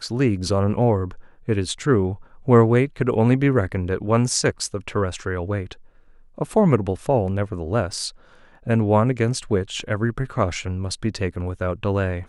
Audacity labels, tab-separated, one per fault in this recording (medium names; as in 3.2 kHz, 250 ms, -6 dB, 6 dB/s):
7.930000	7.930000	dropout 2.9 ms